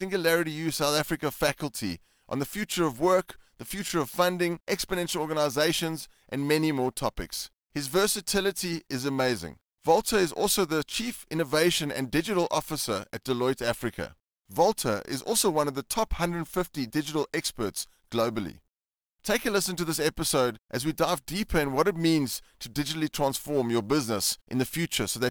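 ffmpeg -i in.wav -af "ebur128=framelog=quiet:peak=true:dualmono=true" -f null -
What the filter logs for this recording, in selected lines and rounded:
Integrated loudness:
  I:         -24.8 LUFS
  Threshold: -35.0 LUFS
Loudness range:
  LRA:         2.7 LU
  Threshold: -45.1 LUFS
  LRA low:   -26.3 LUFS
  LRA high:  -23.6 LUFS
True peak:
  Peak:      -10.0 dBFS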